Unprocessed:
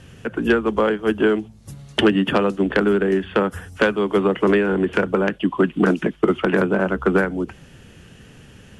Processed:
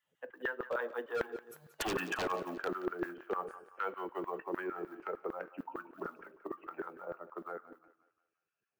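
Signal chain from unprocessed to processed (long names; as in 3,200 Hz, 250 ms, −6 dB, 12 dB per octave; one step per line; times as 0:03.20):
spectral dynamics exaggerated over time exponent 1.5
source passing by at 0:01.82, 34 m/s, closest 7 metres
on a send at −14.5 dB: convolution reverb RT60 0.65 s, pre-delay 6 ms
on the sum: floating-point word with a short mantissa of 4 bits
auto-filter high-pass saw down 6.6 Hz 360–1,600 Hz
parametric band 7,200 Hz −13.5 dB 2 octaves
wave folding −24 dBFS
parametric band 2,200 Hz −4 dB 0.26 octaves
reversed playback
downward compressor 10 to 1, threshold −40 dBFS, peak gain reduction 13 dB
reversed playback
feedback echo with a high-pass in the loop 176 ms, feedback 43%, high-pass 450 Hz, level −14.5 dB
level +7.5 dB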